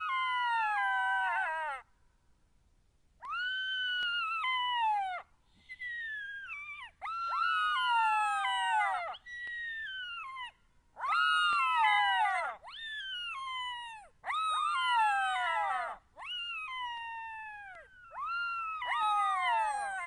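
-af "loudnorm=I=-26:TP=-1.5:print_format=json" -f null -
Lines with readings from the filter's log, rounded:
"input_i" : "-32.4",
"input_tp" : "-17.6",
"input_lra" : "4.2",
"input_thresh" : "-43.0",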